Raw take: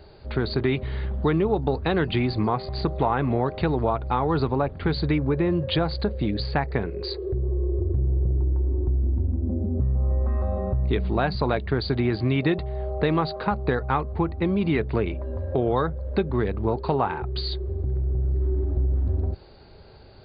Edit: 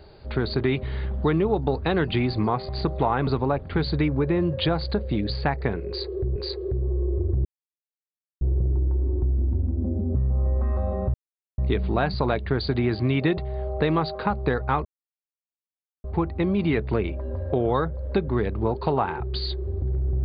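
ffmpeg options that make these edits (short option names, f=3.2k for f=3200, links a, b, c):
-filter_complex "[0:a]asplit=6[a][b][c][d][e][f];[a]atrim=end=3.272[g];[b]atrim=start=4.368:end=7.462[h];[c]atrim=start=6.968:end=8.06,asetpts=PTS-STARTPTS,afade=t=out:st=1.088:d=0.004:c=hsin,apad=pad_dur=0.96[i];[d]atrim=start=8.06:end=10.79,asetpts=PTS-STARTPTS,afade=t=in:d=0.004:c=hsin,afade=t=out:st=2.726:d=0.004:c=hsin,apad=pad_dur=0.44[j];[e]atrim=start=10.79:end=14.06,asetpts=PTS-STARTPTS,afade=t=in:d=0.004:c=hsin,afade=t=out:st=3.266:d=0.004:c=hsin,apad=pad_dur=1.19[k];[f]atrim=start=14.06,asetpts=PTS-STARTPTS,afade=t=in:d=0.004:c=hsin[l];[g][h]acrossfade=d=0.004:c1=hsin:c2=hsin[m];[i][j][k][l]concat=n=4:v=0:a=1[n];[m][n]acrossfade=d=0.004:c1=hsin:c2=hsin"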